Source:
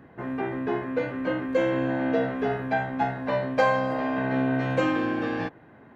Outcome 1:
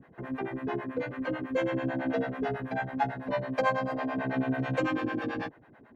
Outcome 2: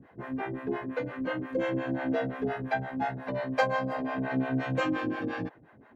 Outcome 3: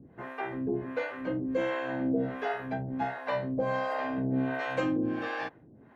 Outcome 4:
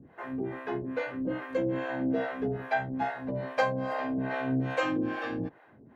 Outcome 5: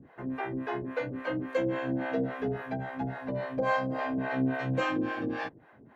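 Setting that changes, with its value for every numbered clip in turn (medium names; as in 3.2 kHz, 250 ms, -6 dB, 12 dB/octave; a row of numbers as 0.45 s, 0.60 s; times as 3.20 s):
harmonic tremolo, rate: 9.1 Hz, 5.7 Hz, 1.4 Hz, 2.4 Hz, 3.6 Hz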